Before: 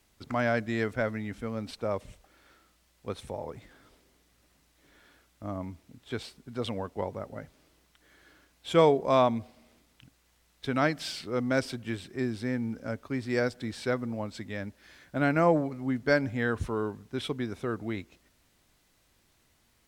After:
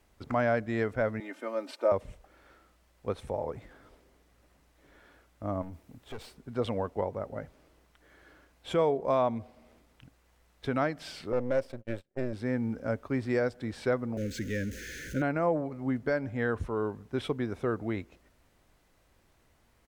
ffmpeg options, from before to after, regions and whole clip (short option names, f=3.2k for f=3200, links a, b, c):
-filter_complex "[0:a]asettb=1/sr,asplit=3[a][b][c];[a]atrim=end=1.204[d];[b]atrim=start=1.2:end=1.92,asetpts=PTS-STARTPTS,afade=t=in:d=0.004:c=qsin,afade=t=out:st=0.716:d=0.004:c=qsin,highpass=f=330:w=0.5412,highpass=f=330:w=1.3066,aecho=1:1:3.3:0.77,atrim=end_sample=31752[e];[c]atrim=start=1.916[f];[d][e]acrossfade=d=0.004:c1=hsin:c2=qsin[g];[g][f]acrossfade=d=0.004:c1=qsin:c2=hsin,asettb=1/sr,asplit=3[h][i][j];[h]atrim=end=5.624[k];[i]atrim=start=5.62:end=6.35,asetpts=PTS-STARTPTS,afade=t=in:d=0.004:c=qsin,afade=t=out:st=0.726:d=0.004:c=qsin,aeval=exprs='clip(val(0),-1,0.00596)':c=same,highshelf=f=9.4k:g=8,acompressor=threshold=-42dB:ratio=2:attack=3.2:release=140:knee=1:detection=peak[l];[j]atrim=start=6.346[m];[k][l]acrossfade=d=0.004:c1=hsin:c2=qsin[n];[n][m]acrossfade=d=0.004:c1=qsin:c2=hsin,asettb=1/sr,asplit=3[o][p][q];[o]atrim=end=11.324[r];[p]atrim=start=11.32:end=12.33,asetpts=PTS-STARTPTS,afade=t=in:d=0.004:c=qsin,afade=t=out:st=1.006:d=0.004:c=qsin,aeval=exprs='if(lt(val(0),0),0.251*val(0),val(0))':c=same,agate=range=-31dB:threshold=-44dB:ratio=16:release=100:detection=peak,equalizer=f=550:t=o:w=0.21:g=13[s];[q]atrim=start=12.326[t];[r][s]acrossfade=d=0.004:c1=hsin:c2=qsin[u];[u][t]acrossfade=d=0.004:c1=qsin:c2=hsin,asettb=1/sr,asplit=3[v][w][x];[v]atrim=end=14.174[y];[w]atrim=start=14.17:end=15.22,asetpts=PTS-STARTPTS,afade=t=in:d=0.004:c=qsin,afade=t=out:st=1.046:d=0.004:c=qsin,aeval=exprs='val(0)+0.5*0.0133*sgn(val(0))':c=same,asuperstop=centerf=880:order=12:qfactor=0.93,equalizer=f=6.4k:w=5.9:g=11.5[z];[x]atrim=start=15.216[aa];[y][z]acrossfade=d=0.004:c1=hsin:c2=qsin[ab];[ab][aa]acrossfade=d=0.004:c1=qsin:c2=hsin,lowshelf=f=160:g=12,alimiter=limit=-19dB:level=0:latency=1:release=499,firequalizer=gain_entry='entry(100,0);entry(500,10);entry(3700,1)':delay=0.05:min_phase=1,volume=-6dB"